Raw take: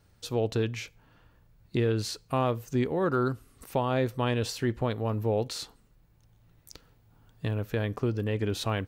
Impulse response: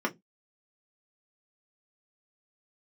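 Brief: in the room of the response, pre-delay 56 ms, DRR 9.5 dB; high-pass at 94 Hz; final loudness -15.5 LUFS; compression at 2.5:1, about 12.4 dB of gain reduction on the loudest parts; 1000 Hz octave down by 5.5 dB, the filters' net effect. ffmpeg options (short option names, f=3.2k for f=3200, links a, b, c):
-filter_complex "[0:a]highpass=94,equalizer=f=1k:t=o:g=-7.5,acompressor=threshold=-43dB:ratio=2.5,asplit=2[a][b];[1:a]atrim=start_sample=2205,adelay=56[c];[b][c]afir=irnorm=-1:irlink=0,volume=-18.5dB[d];[a][d]amix=inputs=2:normalize=0,volume=26.5dB"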